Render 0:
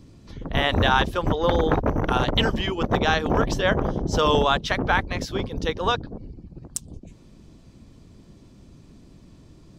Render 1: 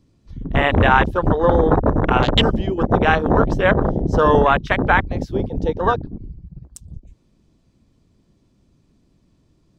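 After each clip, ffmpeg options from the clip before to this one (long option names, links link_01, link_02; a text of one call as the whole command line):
ffmpeg -i in.wav -af "afwtdn=0.0501,volume=6dB" out.wav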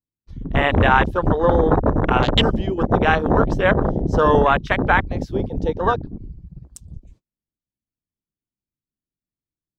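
ffmpeg -i in.wav -af "agate=range=-35dB:threshold=-47dB:ratio=16:detection=peak,volume=-1dB" out.wav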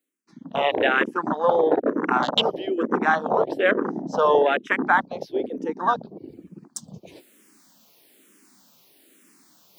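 ffmpeg -i in.wav -filter_complex "[0:a]highpass=frequency=240:width=0.5412,highpass=frequency=240:width=1.3066,areverse,acompressor=mode=upward:threshold=-22dB:ratio=2.5,areverse,asplit=2[link_01][link_02];[link_02]afreqshift=-1.1[link_03];[link_01][link_03]amix=inputs=2:normalize=1" out.wav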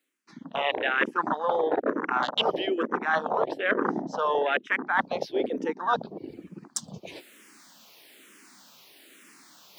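ffmpeg -i in.wav -af "equalizer=frequency=2100:width=0.33:gain=10.5,areverse,acompressor=threshold=-20dB:ratio=12,areverse,volume=-1.5dB" out.wav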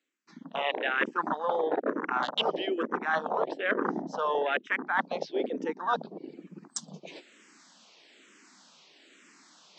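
ffmpeg -i in.wav -af "afftfilt=real='re*between(b*sr/4096,150,8100)':imag='im*between(b*sr/4096,150,8100)':win_size=4096:overlap=0.75,volume=-3dB" out.wav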